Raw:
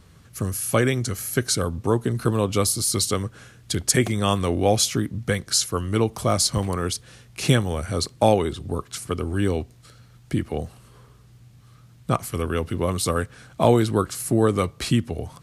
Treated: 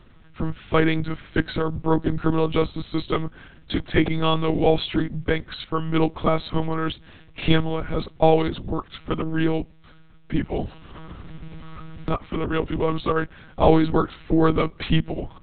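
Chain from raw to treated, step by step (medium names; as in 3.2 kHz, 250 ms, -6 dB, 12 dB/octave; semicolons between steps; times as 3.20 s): monotone LPC vocoder at 8 kHz 160 Hz; 10.59–12.53 s: three bands compressed up and down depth 70%; trim +1.5 dB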